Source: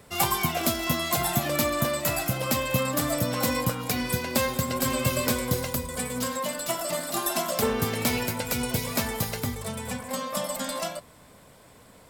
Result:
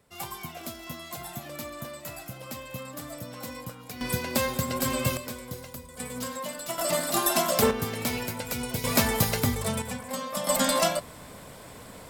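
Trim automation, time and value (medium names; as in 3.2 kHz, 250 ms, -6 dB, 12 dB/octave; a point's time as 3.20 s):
-13 dB
from 4.01 s -1.5 dB
from 5.17 s -12 dB
from 6.00 s -5 dB
from 6.78 s +3 dB
from 7.71 s -4 dB
from 8.84 s +4.5 dB
from 9.82 s -2 dB
from 10.47 s +7.5 dB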